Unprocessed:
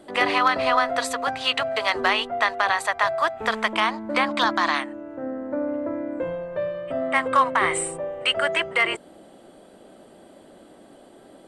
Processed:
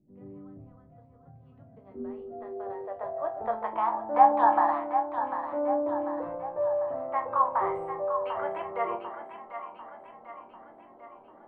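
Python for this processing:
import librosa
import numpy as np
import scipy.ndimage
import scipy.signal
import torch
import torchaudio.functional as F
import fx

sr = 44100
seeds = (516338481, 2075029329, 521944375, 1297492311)

p1 = fx.filter_sweep_lowpass(x, sr, from_hz=150.0, to_hz=910.0, start_s=1.34, end_s=3.75, q=3.1)
p2 = fx.resonator_bank(p1, sr, root=39, chord='major', decay_s=0.25)
p3 = fx.small_body(p2, sr, hz=(810.0, 1700.0), ring_ms=45, db=fx.line((3.92, 17.0), (4.69, 14.0)), at=(3.92, 4.69), fade=0.02)
y = p3 + fx.echo_split(p3, sr, split_hz=660.0, low_ms=139, high_ms=745, feedback_pct=52, wet_db=-8.0, dry=0)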